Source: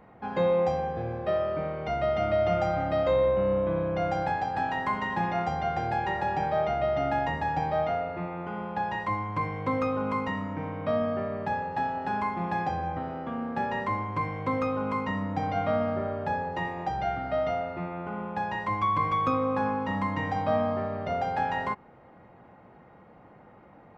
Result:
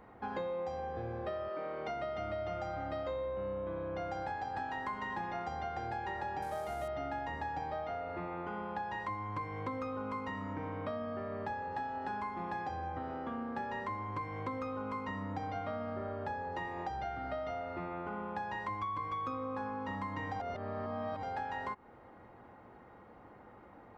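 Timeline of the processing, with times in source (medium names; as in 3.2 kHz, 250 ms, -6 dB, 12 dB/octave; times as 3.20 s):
1.48–2.17 s: high-pass 350 Hz -> 87 Hz
6.42–6.88 s: CVSD coder 64 kbps
20.40–21.23 s: reverse
whole clip: fifteen-band graphic EQ 160 Hz -10 dB, 630 Hz -4 dB, 2.5 kHz -4 dB; compression, threshold -36 dBFS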